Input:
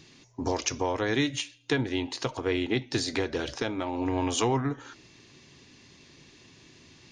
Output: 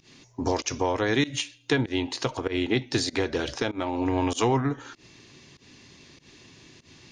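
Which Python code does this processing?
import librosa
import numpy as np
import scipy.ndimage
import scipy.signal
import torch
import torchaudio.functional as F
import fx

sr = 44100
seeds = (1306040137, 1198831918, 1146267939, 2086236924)

y = fx.volume_shaper(x, sr, bpm=97, per_beat=1, depth_db=-22, release_ms=130.0, shape='fast start')
y = F.gain(torch.from_numpy(y), 3.0).numpy()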